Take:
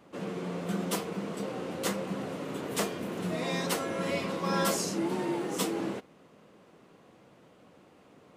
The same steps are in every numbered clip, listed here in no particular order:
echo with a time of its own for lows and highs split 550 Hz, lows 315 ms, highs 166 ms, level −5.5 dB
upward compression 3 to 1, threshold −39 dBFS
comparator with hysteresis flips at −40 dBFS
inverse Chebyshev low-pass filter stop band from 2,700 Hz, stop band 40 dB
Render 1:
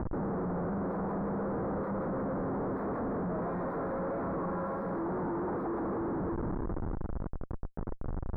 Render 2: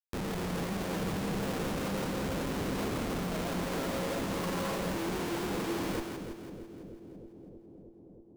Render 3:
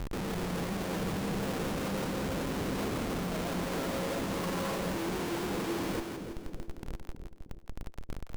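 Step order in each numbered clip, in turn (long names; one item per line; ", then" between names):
echo with a time of its own for lows and highs, then upward compression, then comparator with hysteresis, then inverse Chebyshev low-pass filter
inverse Chebyshev low-pass filter, then comparator with hysteresis, then echo with a time of its own for lows and highs, then upward compression
upward compression, then inverse Chebyshev low-pass filter, then comparator with hysteresis, then echo with a time of its own for lows and highs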